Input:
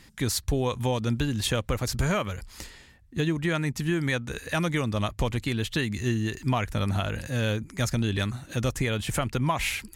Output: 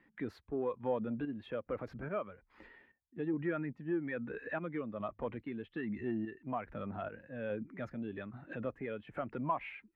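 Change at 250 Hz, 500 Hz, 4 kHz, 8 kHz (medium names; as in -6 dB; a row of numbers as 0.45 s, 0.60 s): -9.5 dB, -7.5 dB, under -25 dB, under -40 dB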